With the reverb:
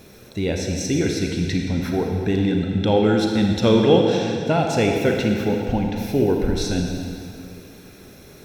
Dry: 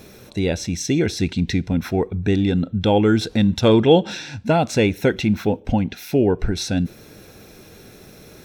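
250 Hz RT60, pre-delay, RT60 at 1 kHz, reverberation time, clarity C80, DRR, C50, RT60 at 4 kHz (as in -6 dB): 2.4 s, 32 ms, 2.4 s, 2.4 s, 3.0 dB, 1.0 dB, 2.0 dB, 2.1 s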